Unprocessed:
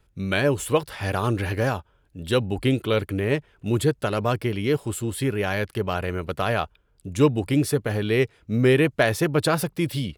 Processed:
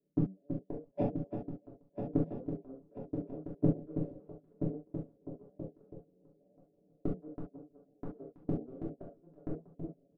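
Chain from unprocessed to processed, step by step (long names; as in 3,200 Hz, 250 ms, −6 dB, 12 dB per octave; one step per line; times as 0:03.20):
one scale factor per block 5 bits
automatic gain control gain up to 10 dB
low-shelf EQ 290 Hz +11 dB
soft clipping −13 dBFS, distortion −7 dB
elliptic band-pass filter 180–610 Hz, stop band 40 dB
gate with flip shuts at −28 dBFS, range −37 dB
echo machine with several playback heads 326 ms, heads first and third, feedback 67%, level −7.5 dB
noise gate −51 dBFS, range −25 dB
comb filter 7 ms, depth 67%
convolution reverb, pre-delay 3 ms, DRR −5 dB
level +7.5 dB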